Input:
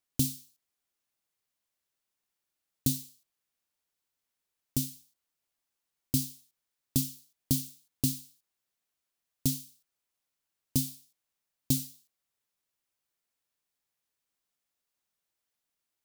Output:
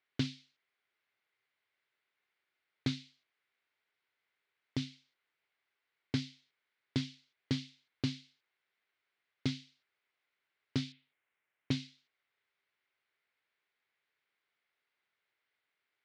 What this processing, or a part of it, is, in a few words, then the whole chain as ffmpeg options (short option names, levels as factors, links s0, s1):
overdrive pedal into a guitar cabinet: -filter_complex "[0:a]asplit=2[s0][s1];[s1]highpass=f=720:p=1,volume=3.55,asoftclip=type=tanh:threshold=0.251[s2];[s0][s2]amix=inputs=2:normalize=0,lowpass=f=6200:p=1,volume=0.501,highpass=80,equalizer=f=110:t=q:w=4:g=8,equalizer=f=400:t=q:w=4:g=7,equalizer=f=1500:t=q:w=4:g=5,equalizer=f=2100:t=q:w=4:g=9,lowpass=f=4000:w=0.5412,lowpass=f=4000:w=1.3066,asettb=1/sr,asplit=3[s3][s4][s5];[s3]atrim=end=10.924[s6];[s4]atrim=start=10.92:end=11.71,asetpts=PTS-STARTPTS,afade=t=in:d=0.004:c=qsin,afade=t=out:st=0.786:d=0.004:c=qsin,lowpass=f=3100:w=0.5412,lowpass=f=3100:w=1.3066[s7];[s5]atrim=start=11.706[s8];[s6][s7]acrossfade=d=0.004:c1=hsin:c2=qsin[s9];[s9][s8]acrossfade=d=0.004:c1=qsin:c2=hsin,volume=0.75"